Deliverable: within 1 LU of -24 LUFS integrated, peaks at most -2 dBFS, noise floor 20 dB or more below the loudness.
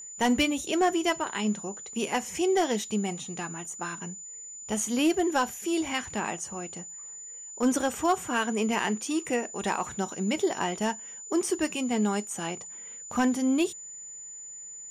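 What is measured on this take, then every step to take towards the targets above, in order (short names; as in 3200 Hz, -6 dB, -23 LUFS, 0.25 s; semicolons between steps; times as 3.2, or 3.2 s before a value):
clipped 0.2%; flat tops at -17.0 dBFS; steady tone 7000 Hz; tone level -40 dBFS; loudness -28.5 LUFS; peak -17.0 dBFS; loudness target -24.0 LUFS
-> clip repair -17 dBFS; notch 7000 Hz, Q 30; gain +4.5 dB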